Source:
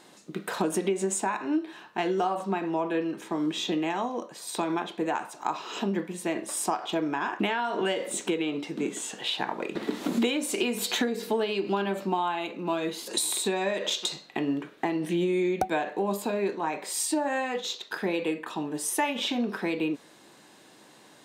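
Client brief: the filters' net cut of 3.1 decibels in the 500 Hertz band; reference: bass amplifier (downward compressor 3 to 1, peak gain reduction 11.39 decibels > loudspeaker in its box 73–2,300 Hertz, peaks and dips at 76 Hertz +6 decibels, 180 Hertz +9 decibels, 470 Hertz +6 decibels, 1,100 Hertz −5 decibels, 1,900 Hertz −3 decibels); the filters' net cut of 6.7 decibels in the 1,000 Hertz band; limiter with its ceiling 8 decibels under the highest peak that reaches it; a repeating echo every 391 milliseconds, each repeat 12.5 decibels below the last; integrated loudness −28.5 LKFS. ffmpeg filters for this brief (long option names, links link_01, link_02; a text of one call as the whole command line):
ffmpeg -i in.wav -af "equalizer=frequency=500:width_type=o:gain=-7,equalizer=frequency=1000:width_type=o:gain=-4.5,alimiter=limit=-21.5dB:level=0:latency=1,aecho=1:1:391|782|1173:0.237|0.0569|0.0137,acompressor=threshold=-40dB:ratio=3,highpass=frequency=73:width=0.5412,highpass=frequency=73:width=1.3066,equalizer=frequency=76:width_type=q:width=4:gain=6,equalizer=frequency=180:width_type=q:width=4:gain=9,equalizer=frequency=470:width_type=q:width=4:gain=6,equalizer=frequency=1100:width_type=q:width=4:gain=-5,equalizer=frequency=1900:width_type=q:width=4:gain=-3,lowpass=frequency=2300:width=0.5412,lowpass=frequency=2300:width=1.3066,volume=12dB" out.wav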